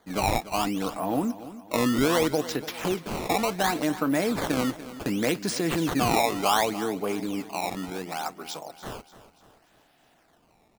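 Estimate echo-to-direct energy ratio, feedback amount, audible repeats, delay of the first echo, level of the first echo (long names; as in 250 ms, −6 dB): −14.0 dB, 46%, 3, 291 ms, −15.0 dB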